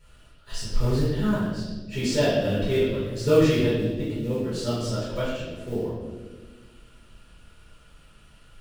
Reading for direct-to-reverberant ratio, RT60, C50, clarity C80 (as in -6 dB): -11.0 dB, 1.4 s, -1.5 dB, 2.0 dB